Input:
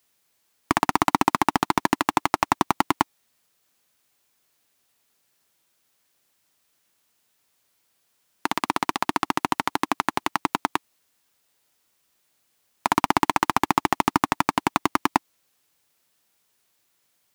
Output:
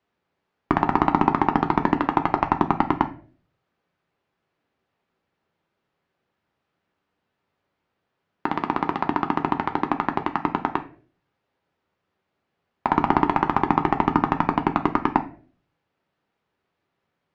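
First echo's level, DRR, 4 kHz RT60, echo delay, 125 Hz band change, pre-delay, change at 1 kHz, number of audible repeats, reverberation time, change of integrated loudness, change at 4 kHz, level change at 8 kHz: no echo audible, 5.5 dB, 0.30 s, no echo audible, +5.5 dB, 5 ms, +0.5 dB, no echo audible, 0.45 s, +1.0 dB, −10.0 dB, below −20 dB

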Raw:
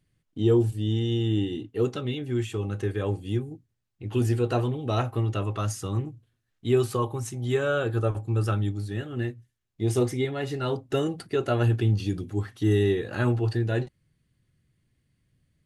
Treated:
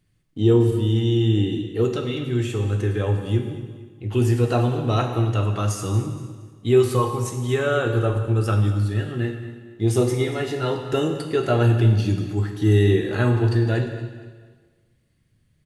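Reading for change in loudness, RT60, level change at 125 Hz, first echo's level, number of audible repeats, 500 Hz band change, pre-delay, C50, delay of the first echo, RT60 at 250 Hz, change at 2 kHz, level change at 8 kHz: +5.5 dB, 1.5 s, +6.0 dB, −16.5 dB, 3, +5.0 dB, 5 ms, 6.0 dB, 234 ms, 1.5 s, +5.0 dB, +5.0 dB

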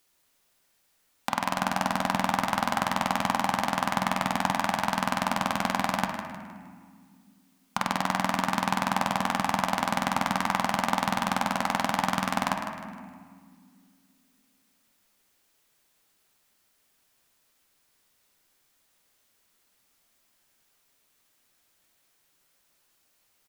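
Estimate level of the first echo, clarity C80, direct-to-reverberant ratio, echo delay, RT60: −9.5 dB, 5.0 dB, 3.0 dB, 155 ms, 1.9 s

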